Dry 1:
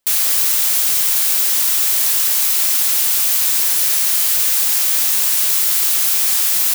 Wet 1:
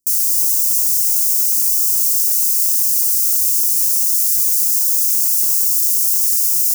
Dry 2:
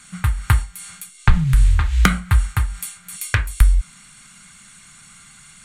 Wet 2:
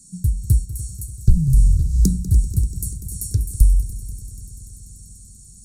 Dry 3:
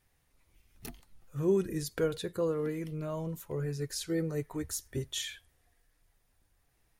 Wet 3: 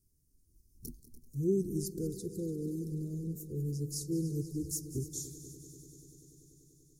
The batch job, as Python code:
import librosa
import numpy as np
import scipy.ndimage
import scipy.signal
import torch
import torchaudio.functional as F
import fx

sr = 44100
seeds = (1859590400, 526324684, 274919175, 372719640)

y = scipy.signal.sosfilt(scipy.signal.cheby2(4, 40, [650.0, 3200.0], 'bandstop', fs=sr, output='sos'), x)
y = fx.echo_heads(y, sr, ms=97, heads='second and third', feedback_pct=74, wet_db=-15.5)